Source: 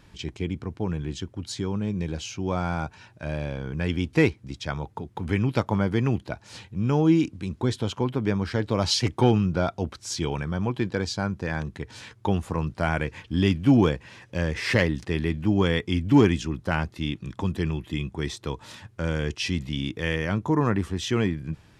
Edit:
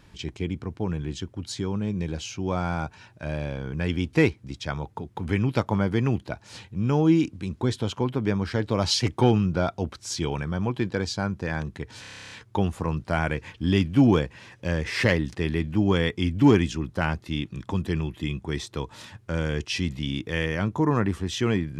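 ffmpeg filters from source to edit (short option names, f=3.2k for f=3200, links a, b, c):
-filter_complex "[0:a]asplit=11[a][b][c][d][e][f][g][h][i][j][k];[a]atrim=end=12.042[l];[b]atrim=start=12.008:end=12.042[m];[c]atrim=start=12.008:end=12.042[n];[d]atrim=start=12.008:end=12.042[o];[e]atrim=start=12.008:end=12.042[p];[f]atrim=start=12.008:end=12.042[q];[g]atrim=start=12.008:end=12.042[r];[h]atrim=start=12.008:end=12.042[s];[i]atrim=start=12.008:end=12.042[t];[j]atrim=start=12.008:end=12.042[u];[k]atrim=start=12.008[v];[l][m]acrossfade=d=0.004:c1=hsin:c2=hsin[w];[w][n]acrossfade=d=0.004:c1=hsin:c2=hsin[x];[x][o]acrossfade=d=0.004:c1=hsin:c2=hsin[y];[y][p]acrossfade=d=0.004:c1=hsin:c2=hsin[z];[z][q]acrossfade=d=0.004:c1=hsin:c2=hsin[aa];[aa][r]acrossfade=d=0.004:c1=hsin:c2=hsin[ab];[ab][s]acrossfade=d=0.004:c1=hsin:c2=hsin[ac];[ac][t]acrossfade=d=0.004:c1=hsin:c2=hsin[ad];[ad][u]acrossfade=d=0.004:c1=hsin:c2=hsin[ae];[ae][v]acrossfade=d=0.004:c1=hsin:c2=hsin"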